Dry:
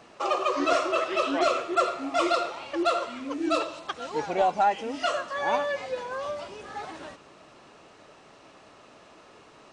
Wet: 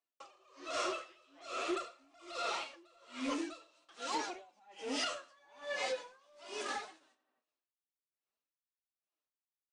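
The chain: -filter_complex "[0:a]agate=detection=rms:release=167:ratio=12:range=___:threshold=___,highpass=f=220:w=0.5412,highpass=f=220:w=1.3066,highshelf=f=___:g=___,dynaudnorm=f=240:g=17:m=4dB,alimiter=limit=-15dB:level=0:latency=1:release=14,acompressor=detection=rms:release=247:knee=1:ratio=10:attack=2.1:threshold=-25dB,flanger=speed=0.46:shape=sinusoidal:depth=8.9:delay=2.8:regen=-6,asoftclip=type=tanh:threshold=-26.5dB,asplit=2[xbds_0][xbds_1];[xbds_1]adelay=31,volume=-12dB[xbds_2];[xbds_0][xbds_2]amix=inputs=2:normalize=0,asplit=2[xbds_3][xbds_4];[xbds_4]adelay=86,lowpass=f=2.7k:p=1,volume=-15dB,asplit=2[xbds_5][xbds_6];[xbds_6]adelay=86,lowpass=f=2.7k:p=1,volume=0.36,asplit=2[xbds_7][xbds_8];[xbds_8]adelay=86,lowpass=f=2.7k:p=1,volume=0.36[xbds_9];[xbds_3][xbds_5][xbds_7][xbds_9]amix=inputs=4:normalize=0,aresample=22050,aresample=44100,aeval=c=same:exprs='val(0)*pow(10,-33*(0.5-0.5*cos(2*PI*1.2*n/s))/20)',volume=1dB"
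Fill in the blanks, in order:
-46dB, -40dB, 2.1k, 11.5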